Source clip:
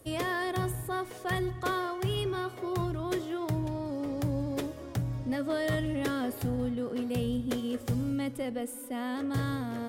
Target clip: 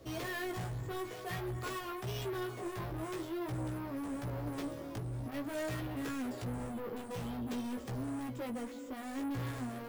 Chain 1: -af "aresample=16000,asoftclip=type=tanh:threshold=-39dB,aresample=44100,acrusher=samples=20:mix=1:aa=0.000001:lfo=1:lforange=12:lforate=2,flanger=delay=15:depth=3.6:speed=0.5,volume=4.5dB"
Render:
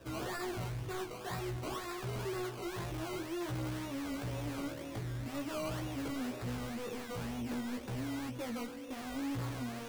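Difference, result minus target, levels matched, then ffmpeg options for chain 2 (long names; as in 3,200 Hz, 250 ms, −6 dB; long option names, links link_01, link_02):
sample-and-hold swept by an LFO: distortion +12 dB
-af "aresample=16000,asoftclip=type=tanh:threshold=-39dB,aresample=44100,acrusher=samples=4:mix=1:aa=0.000001:lfo=1:lforange=2.4:lforate=2,flanger=delay=15:depth=3.6:speed=0.5,volume=4.5dB"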